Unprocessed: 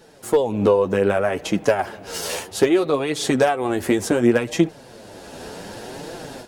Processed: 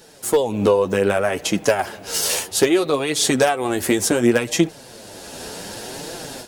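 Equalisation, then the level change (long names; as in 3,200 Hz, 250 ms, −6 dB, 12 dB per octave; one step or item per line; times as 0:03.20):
high-shelf EQ 3,200 Hz +10.5 dB
0.0 dB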